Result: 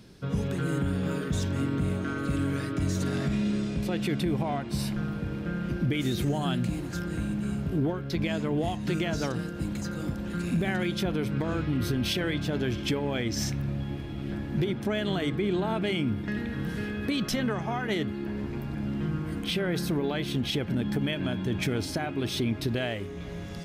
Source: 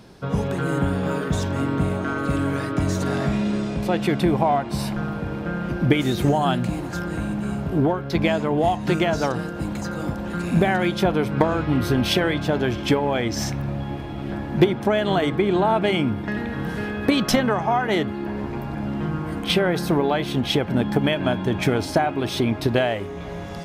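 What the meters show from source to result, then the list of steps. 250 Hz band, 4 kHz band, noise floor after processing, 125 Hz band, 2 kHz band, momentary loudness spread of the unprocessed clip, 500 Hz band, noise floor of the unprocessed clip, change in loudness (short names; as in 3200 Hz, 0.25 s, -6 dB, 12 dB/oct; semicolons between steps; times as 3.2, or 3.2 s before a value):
-6.0 dB, -6.0 dB, -36 dBFS, -5.0 dB, -7.5 dB, 8 LU, -9.5 dB, -31 dBFS, -7.0 dB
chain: bell 830 Hz -10.5 dB 1.5 oct; limiter -16 dBFS, peak gain reduction 9.5 dB; gain -3 dB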